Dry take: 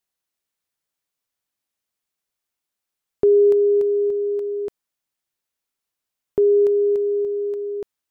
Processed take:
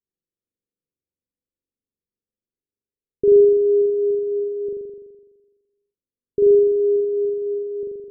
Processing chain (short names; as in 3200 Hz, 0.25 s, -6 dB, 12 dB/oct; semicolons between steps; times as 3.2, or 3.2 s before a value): steep low-pass 520 Hz 72 dB/oct; flutter echo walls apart 7.2 m, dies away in 1.3 s; ending taper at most 300 dB/s; gain -2.5 dB